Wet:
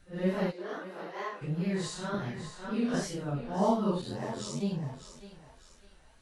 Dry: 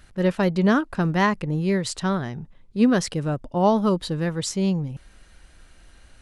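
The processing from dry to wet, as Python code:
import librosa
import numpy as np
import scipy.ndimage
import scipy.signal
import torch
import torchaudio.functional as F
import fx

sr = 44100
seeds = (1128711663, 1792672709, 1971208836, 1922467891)

y = fx.phase_scramble(x, sr, seeds[0], window_ms=200)
y = fx.ladder_highpass(y, sr, hz=360.0, resonance_pct=40, at=(0.51, 1.41), fade=0.02)
y = fx.ring_mod(y, sr, carrier_hz=45.0, at=(4.01, 4.59), fade=0.02)
y = fx.wow_flutter(y, sr, seeds[1], rate_hz=2.1, depth_cents=68.0)
y = fx.echo_thinned(y, sr, ms=603, feedback_pct=40, hz=540.0, wet_db=-10.5)
y = fx.band_squash(y, sr, depth_pct=70, at=(2.14, 2.94))
y = y * 10.0 ** (-9.0 / 20.0)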